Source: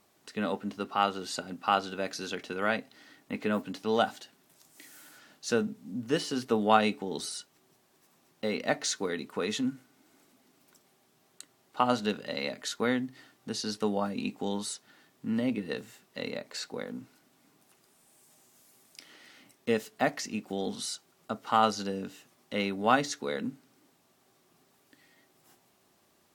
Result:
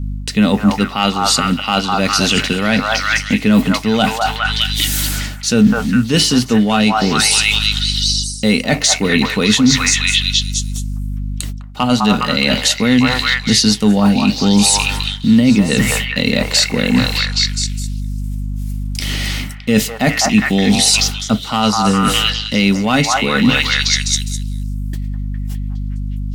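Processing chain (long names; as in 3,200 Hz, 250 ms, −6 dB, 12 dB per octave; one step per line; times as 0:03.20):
noise gate −58 dBFS, range −30 dB
low-shelf EQ 170 Hz +5.5 dB
mains hum 50 Hz, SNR 22 dB
in parallel at −6 dB: gain into a clipping stage and back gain 19.5 dB
on the sum: echo through a band-pass that steps 205 ms, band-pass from 1,000 Hz, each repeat 0.7 octaves, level 0 dB
reversed playback
downward compressor 5 to 1, threshold −37 dBFS, peak gain reduction 20.5 dB
reversed playback
flat-topped bell 730 Hz −9 dB 2.8 octaves
boost into a limiter +31 dB
level −1 dB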